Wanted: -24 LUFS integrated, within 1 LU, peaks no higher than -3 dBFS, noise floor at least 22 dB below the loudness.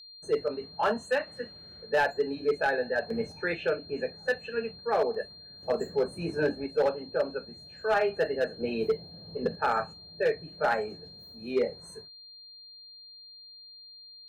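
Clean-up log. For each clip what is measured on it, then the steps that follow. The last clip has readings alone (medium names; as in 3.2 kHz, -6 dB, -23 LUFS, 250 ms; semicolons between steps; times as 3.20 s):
clipped samples 0.6%; clipping level -19.0 dBFS; steady tone 4.2 kHz; tone level -47 dBFS; loudness -30.0 LUFS; peak level -19.0 dBFS; loudness target -24.0 LUFS
-> clip repair -19 dBFS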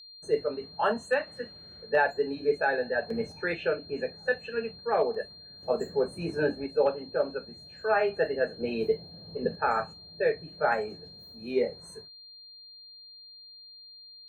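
clipped samples 0.0%; steady tone 4.2 kHz; tone level -47 dBFS
-> band-stop 4.2 kHz, Q 30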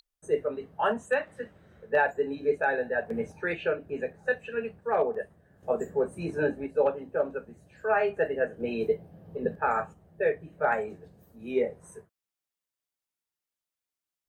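steady tone not found; loudness -29.5 LUFS; peak level -12.0 dBFS; loudness target -24.0 LUFS
-> trim +5.5 dB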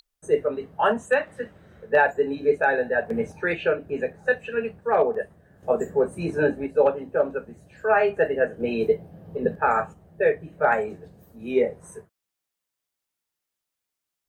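loudness -24.0 LUFS; peak level -6.5 dBFS; noise floor -85 dBFS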